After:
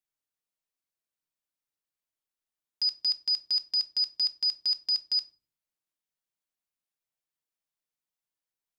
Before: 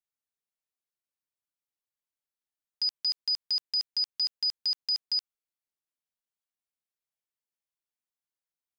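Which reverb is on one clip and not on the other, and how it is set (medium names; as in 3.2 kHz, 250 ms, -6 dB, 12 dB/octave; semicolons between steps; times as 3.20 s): simulated room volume 260 m³, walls furnished, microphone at 0.6 m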